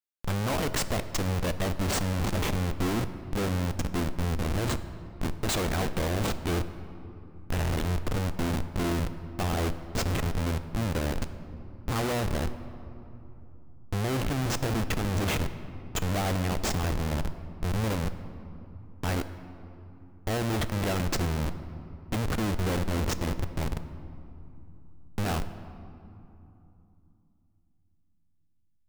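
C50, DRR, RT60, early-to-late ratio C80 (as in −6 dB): 12.5 dB, 10.5 dB, 2.9 s, 13.0 dB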